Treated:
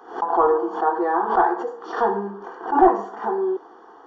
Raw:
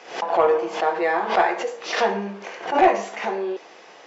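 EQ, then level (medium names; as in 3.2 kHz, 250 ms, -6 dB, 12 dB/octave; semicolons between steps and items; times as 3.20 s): Savitzky-Golay filter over 41 samples; bass shelf 160 Hz +4.5 dB; static phaser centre 580 Hz, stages 6; +4.0 dB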